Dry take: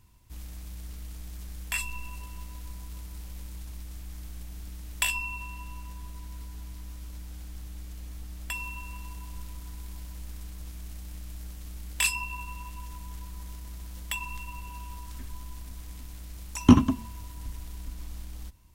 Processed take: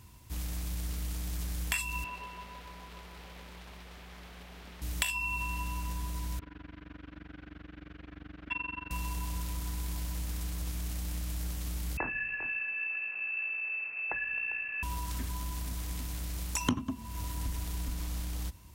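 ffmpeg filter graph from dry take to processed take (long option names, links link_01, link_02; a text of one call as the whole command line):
ffmpeg -i in.wav -filter_complex "[0:a]asettb=1/sr,asplit=3[link_01][link_02][link_03];[link_01]atrim=end=2.044[link_04];[link_02]atrim=start=2.04:end=4.82,asetpts=PTS-STARTPTS,afade=type=in:duration=0.004:curve=qsin,afade=type=out:start_time=2.776:duration=0.004:curve=qsin,acrossover=split=240 3800:gain=0.158 1 0.1[link_05][link_06][link_07];[link_05][link_06][link_07]amix=inputs=3:normalize=0,bandreject=frequency=50:width_type=h:width=6,bandreject=frequency=100:width_type=h:width=6,bandreject=frequency=150:width_type=h:width=6,bandreject=frequency=200:width_type=h:width=6,bandreject=frequency=250:width_type=h:width=6,bandreject=frequency=300:width_type=h:width=6,bandreject=frequency=350:width_type=h:width=6[link_08];[link_03]atrim=start=4.816[link_09];[link_04][link_08]acrossfade=duration=0.004:curve1=hsin:curve2=qsin[link_10];[link_10][link_09]acrossfade=duration=0.004:curve1=qsin:curve2=hsin,asettb=1/sr,asplit=3[link_11][link_12][link_13];[link_11]atrim=end=6.394[link_14];[link_12]atrim=start=6.39:end=8.91,asetpts=PTS-STARTPTS,afade=type=in:duration=0.004:curve=qsin,afade=type=out:start_time=2.516:duration=0.004:curve=qsin,highpass=120,equalizer=frequency=180:width_type=q:width=4:gain=-5,equalizer=frequency=280:width_type=q:width=4:gain=7,equalizer=frequency=880:width_type=q:width=4:gain=-6,equalizer=frequency=1500:width_type=q:width=4:gain=8,lowpass=frequency=2800:width=0.5412,lowpass=frequency=2800:width=1.3066,tremolo=f=23:d=0.974[link_15];[link_13]atrim=start=8.906[link_16];[link_14][link_15]acrossfade=duration=0.004:curve1=hsin:curve2=qsin[link_17];[link_17][link_16]acrossfade=duration=0.004:curve1=qsin:curve2=hsin,asettb=1/sr,asplit=3[link_18][link_19][link_20];[link_18]atrim=end=11.974[link_21];[link_19]atrim=start=11.97:end=14.83,asetpts=PTS-STARTPTS,afade=type=in:duration=0.004:curve=qsin,afade=type=out:start_time=2.856:duration=0.004:curve=qsin,flanger=delay=2.4:depth=6:regen=-69:speed=1.3:shape=triangular,lowpass=frequency=2300:width_type=q:width=0.5098,lowpass=frequency=2300:width_type=q:width=0.6013,lowpass=frequency=2300:width_type=q:width=0.9,lowpass=frequency=2300:width_type=q:width=2.563,afreqshift=-2700,aecho=1:1:400:0.168,atrim=end_sample=126126[link_22];[link_20]atrim=start=14.826[link_23];[link_21][link_22]acrossfade=duration=0.004:curve1=hsin:curve2=qsin[link_24];[link_24][link_23]acrossfade=duration=0.004:curve1=qsin:curve2=hsin,highpass=57,acompressor=threshold=-37dB:ratio=6,volume=7.5dB" out.wav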